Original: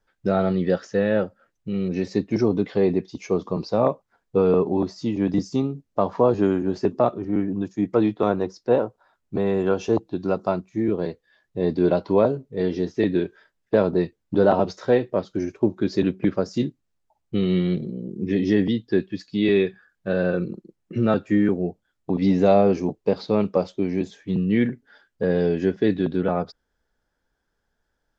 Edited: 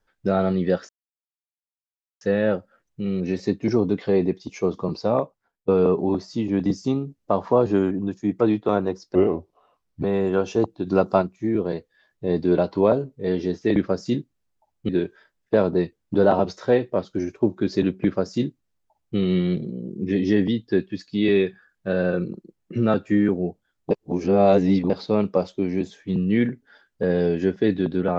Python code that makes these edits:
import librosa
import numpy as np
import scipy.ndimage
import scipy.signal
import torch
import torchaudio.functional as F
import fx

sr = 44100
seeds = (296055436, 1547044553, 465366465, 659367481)

y = fx.edit(x, sr, fx.insert_silence(at_s=0.89, length_s=1.32),
    fx.fade_out_to(start_s=3.72, length_s=0.64, floor_db=-20.5),
    fx.cut(start_s=6.59, length_s=0.86),
    fx.speed_span(start_s=8.69, length_s=0.66, speed=0.76),
    fx.clip_gain(start_s=10.2, length_s=0.35, db=4.5),
    fx.duplicate(start_s=16.24, length_s=1.13, to_s=13.09),
    fx.reverse_span(start_s=22.11, length_s=0.99), tone=tone)